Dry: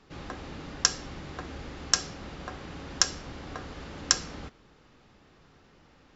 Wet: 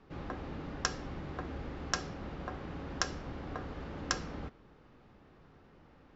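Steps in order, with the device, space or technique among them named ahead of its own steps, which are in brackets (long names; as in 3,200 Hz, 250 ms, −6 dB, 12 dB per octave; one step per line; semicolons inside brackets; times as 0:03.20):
through cloth (low-pass filter 7,100 Hz; high-shelf EQ 2,800 Hz −14.5 dB)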